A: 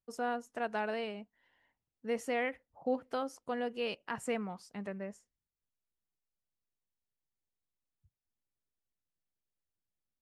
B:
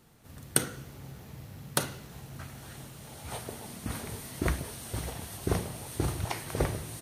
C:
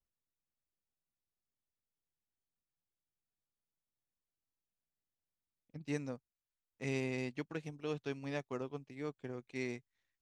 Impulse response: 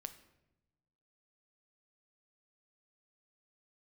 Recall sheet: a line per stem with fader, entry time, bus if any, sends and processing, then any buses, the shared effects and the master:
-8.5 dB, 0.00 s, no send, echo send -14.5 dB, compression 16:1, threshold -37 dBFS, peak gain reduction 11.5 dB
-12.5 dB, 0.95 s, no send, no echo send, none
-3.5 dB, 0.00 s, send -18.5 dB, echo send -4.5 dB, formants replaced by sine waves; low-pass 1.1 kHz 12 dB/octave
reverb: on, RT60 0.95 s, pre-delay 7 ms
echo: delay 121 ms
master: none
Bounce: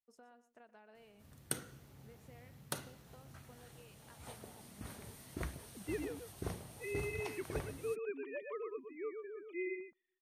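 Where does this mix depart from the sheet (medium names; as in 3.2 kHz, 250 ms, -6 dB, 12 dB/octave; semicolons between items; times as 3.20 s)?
stem A -8.5 dB -> -19.5 dB; stem C: missing low-pass 1.1 kHz 12 dB/octave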